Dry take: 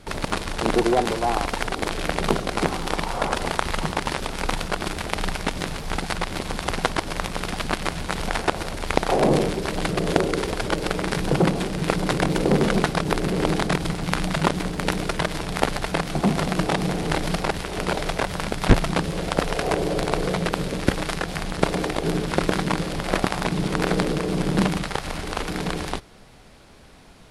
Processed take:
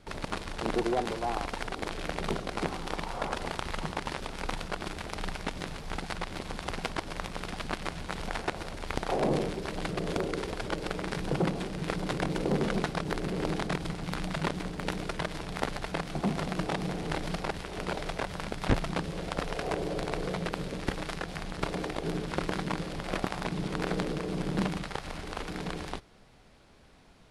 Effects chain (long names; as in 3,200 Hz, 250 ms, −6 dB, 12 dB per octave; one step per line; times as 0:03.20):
wavefolder on the positive side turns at −8.5 dBFS
high-shelf EQ 11,000 Hz −10 dB
level −9 dB